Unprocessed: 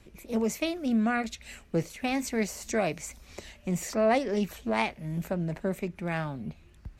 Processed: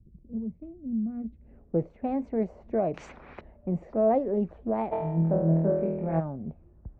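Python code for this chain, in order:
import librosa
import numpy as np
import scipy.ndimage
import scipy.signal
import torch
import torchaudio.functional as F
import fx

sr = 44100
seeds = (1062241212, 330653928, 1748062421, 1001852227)

y = fx.filter_sweep_lowpass(x, sr, from_hz=160.0, to_hz=640.0, start_s=1.09, end_s=1.76, q=1.2)
y = fx.room_flutter(y, sr, wall_m=4.2, rt60_s=0.93, at=(4.91, 6.19), fade=0.02)
y = fx.env_lowpass(y, sr, base_hz=1400.0, full_db=-24.5)
y = fx.high_shelf(y, sr, hz=6800.0, db=5.0)
y = fx.spectral_comp(y, sr, ratio=4.0, at=(2.94, 3.41))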